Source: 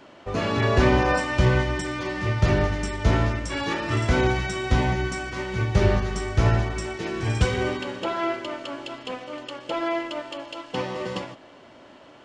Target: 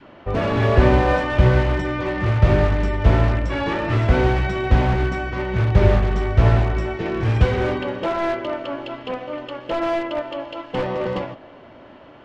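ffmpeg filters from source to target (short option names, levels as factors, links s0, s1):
-filter_complex "[0:a]adynamicequalizer=threshold=0.0158:dfrequency=590:dqfactor=1.4:tfrequency=590:tqfactor=1.4:attack=5:release=100:ratio=0.375:range=2.5:mode=boostabove:tftype=bell,asplit=2[s0][s1];[s1]aeval=exprs='(mod(9.44*val(0)+1,2)-1)/9.44':c=same,volume=0.473[s2];[s0][s2]amix=inputs=2:normalize=0,lowpass=2800,lowshelf=f=120:g=8.5"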